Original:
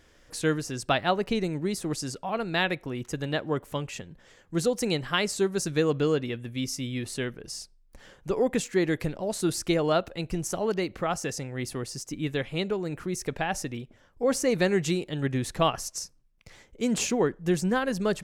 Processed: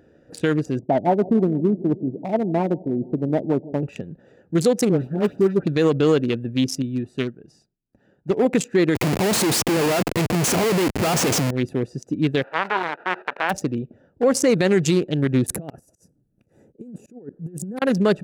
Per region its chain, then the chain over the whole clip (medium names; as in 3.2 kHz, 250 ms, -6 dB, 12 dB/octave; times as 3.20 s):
0.79–3.83 s: rippled Chebyshev low-pass 930 Hz, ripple 6 dB + peaking EQ 390 Hz +4 dB 0.56 oct + feedback delay 156 ms, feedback 57%, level -18.5 dB
4.89–5.67 s: median filter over 41 samples + phase dispersion highs, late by 110 ms, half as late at 1.6 kHz
6.82–8.45 s: peaking EQ 500 Hz -7 dB 0.39 oct + upward expansion, over -46 dBFS
8.95–11.51 s: comb of notches 570 Hz + Schmitt trigger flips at -41 dBFS
12.42–13.49 s: formants flattened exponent 0.1 + cabinet simulation 420–2500 Hz, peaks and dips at 660 Hz +3 dB, 960 Hz +8 dB, 1.5 kHz +9 dB
15.46–17.82 s: FFT filter 280 Hz 0 dB, 4.1 kHz -10 dB, 10 kHz +13 dB + compressor with a negative ratio -33 dBFS, ratio -0.5 + slow attack 375 ms
whole clip: local Wiener filter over 41 samples; high-pass 140 Hz 12 dB/octave; loudness maximiser +20.5 dB; trim -8 dB